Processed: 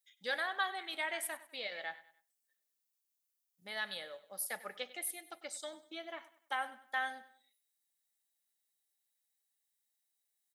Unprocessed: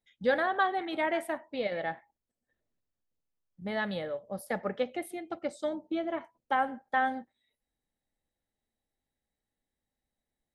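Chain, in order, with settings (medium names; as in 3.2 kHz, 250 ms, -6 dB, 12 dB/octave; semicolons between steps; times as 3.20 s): differentiator; feedback delay 98 ms, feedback 37%, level -17 dB; trim +8 dB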